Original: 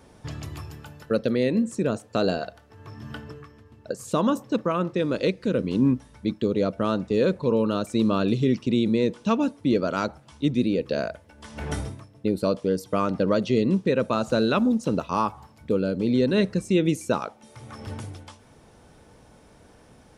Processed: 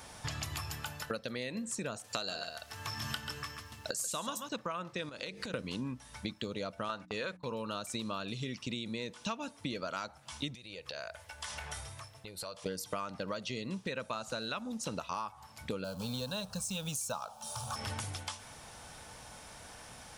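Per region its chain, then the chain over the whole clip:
0:02.04–0:04.49: high-shelf EQ 2,500 Hz +10 dB + single-tap delay 137 ms −10 dB
0:05.09–0:05.54: mains-hum notches 50/100/150/200/250/300/350/400/450 Hz + downward compressor, threshold −35 dBFS
0:06.89–0:07.45: noise gate −34 dBFS, range −25 dB + parametric band 1,500 Hz +8 dB 2.4 octaves + mains-hum notches 60/120/180/240/300 Hz
0:10.55–0:12.66: parametric band 240 Hz −14 dB 1 octave + downward compressor 4 to 1, threshold −44 dBFS
0:15.84–0:17.76: mu-law and A-law mismatch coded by mu + phaser with its sweep stopped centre 840 Hz, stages 4
whole clip: drawn EQ curve 110 Hz 0 dB, 390 Hz −6 dB, 730 Hz +6 dB, 6,900 Hz +13 dB; downward compressor 12 to 1, threshold −33 dBFS; level −1.5 dB

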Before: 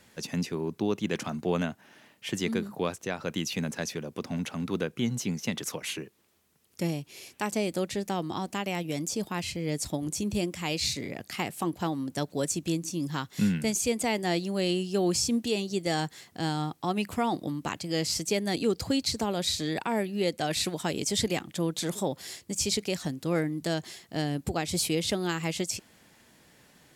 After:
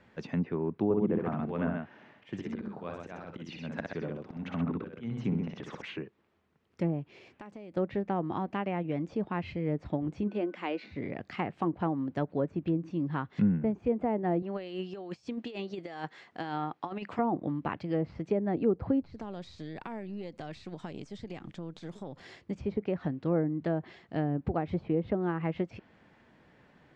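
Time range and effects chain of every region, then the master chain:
0:00.84–0:05.82: volume swells 207 ms + multi-tap delay 60/127 ms −4/−5 dB
0:07.17–0:07.77: downward compressor 10 to 1, threshold −41 dBFS + high-shelf EQ 6,000 Hz −5.5 dB
0:10.27–0:10.91: Butterworth high-pass 230 Hz + steady tone 1,500 Hz −61 dBFS
0:14.42–0:17.19: high-pass filter 570 Hz 6 dB per octave + compressor whose output falls as the input rises −35 dBFS, ratio −0.5
0:19.01–0:22.20: gain on one half-wave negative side −3 dB + bass and treble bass +4 dB, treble +10 dB + downward compressor 8 to 1, threshold −35 dBFS
whole clip: treble cut that deepens with the level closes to 900 Hz, closed at −24 dBFS; low-pass filter 2,000 Hz 12 dB per octave

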